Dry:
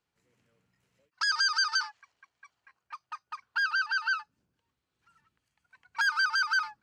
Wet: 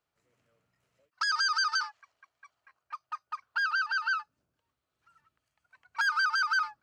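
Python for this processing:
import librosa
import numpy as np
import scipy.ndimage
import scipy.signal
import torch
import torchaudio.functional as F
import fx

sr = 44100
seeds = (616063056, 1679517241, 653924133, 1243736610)

y = fx.graphic_eq_31(x, sr, hz=(200, 630, 1250), db=(-6, 9, 6))
y = F.gain(torch.from_numpy(y), -2.5).numpy()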